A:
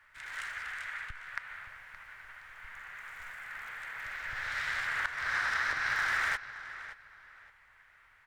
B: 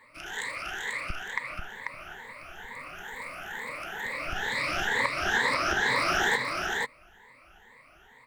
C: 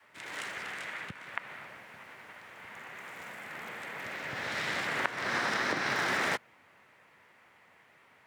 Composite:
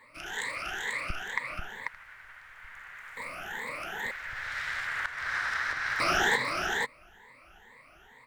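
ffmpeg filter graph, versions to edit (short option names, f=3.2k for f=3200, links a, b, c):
-filter_complex "[0:a]asplit=2[a][b];[1:a]asplit=3[c][d][e];[c]atrim=end=1.882[f];[a]atrim=start=1.878:end=3.172[g];[d]atrim=start=3.168:end=4.112[h];[b]atrim=start=4.108:end=6.002[i];[e]atrim=start=5.998[j];[f][g]acrossfade=d=0.004:c1=hsin:c2=hsin[k];[k][h]acrossfade=d=0.004:c1=hsin:c2=hsin[l];[l][i]acrossfade=d=0.004:c1=hsin:c2=hsin[m];[m][j]acrossfade=d=0.004:c1=hsin:c2=hsin"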